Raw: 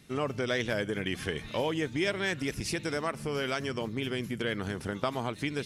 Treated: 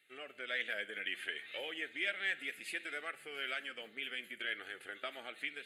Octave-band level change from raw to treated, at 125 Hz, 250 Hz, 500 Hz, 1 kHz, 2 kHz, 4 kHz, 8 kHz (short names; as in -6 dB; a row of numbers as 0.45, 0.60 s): under -35 dB, -21.5 dB, -16.0 dB, -13.5 dB, -2.5 dB, -5.0 dB, -14.0 dB